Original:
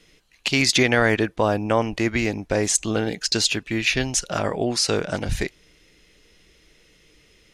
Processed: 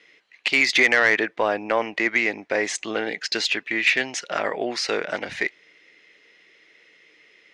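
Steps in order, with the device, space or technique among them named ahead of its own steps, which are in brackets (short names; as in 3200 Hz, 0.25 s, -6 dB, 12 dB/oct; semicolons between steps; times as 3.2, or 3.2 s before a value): intercom (BPF 370–4200 Hz; bell 2000 Hz +9.5 dB 0.53 oct; soft clip -7 dBFS, distortion -18 dB)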